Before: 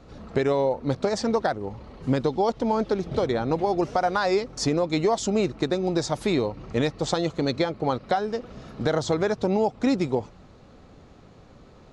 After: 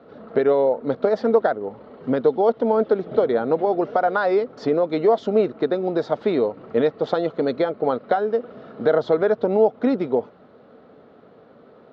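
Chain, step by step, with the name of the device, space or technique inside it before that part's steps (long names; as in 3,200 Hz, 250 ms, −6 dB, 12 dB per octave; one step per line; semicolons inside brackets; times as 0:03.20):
kitchen radio (loudspeaker in its box 190–3,500 Hz, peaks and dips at 240 Hz +5 dB, 450 Hz +9 dB, 640 Hz +7 dB, 1,400 Hz +6 dB, 2,500 Hz −6 dB)
level −1 dB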